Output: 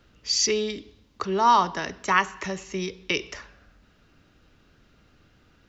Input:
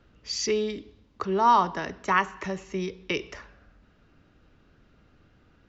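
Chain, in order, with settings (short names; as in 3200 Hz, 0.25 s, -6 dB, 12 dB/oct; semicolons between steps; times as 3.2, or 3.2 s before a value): high shelf 2800 Hz +10 dB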